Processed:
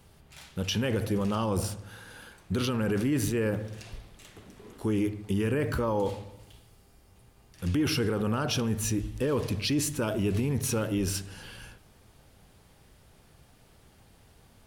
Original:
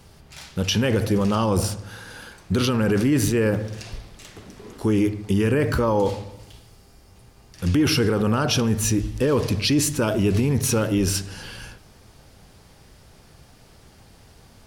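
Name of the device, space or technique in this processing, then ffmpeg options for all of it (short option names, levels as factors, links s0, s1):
exciter from parts: -filter_complex "[0:a]asplit=2[s0][s1];[s1]highpass=f=3500:w=0.5412,highpass=f=3500:w=1.3066,asoftclip=type=tanh:threshold=0.0224,highpass=3800,volume=0.447[s2];[s0][s2]amix=inputs=2:normalize=0,volume=0.422"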